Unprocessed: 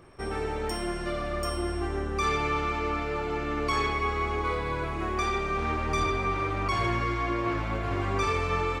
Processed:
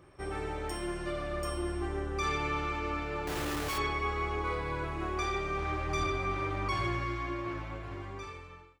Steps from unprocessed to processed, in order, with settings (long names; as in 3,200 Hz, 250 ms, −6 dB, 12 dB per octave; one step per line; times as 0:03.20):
fade-out on the ending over 2.07 s
0:03.27–0:03.78: comparator with hysteresis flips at −42.5 dBFS
notch comb filter 230 Hz
level −3.5 dB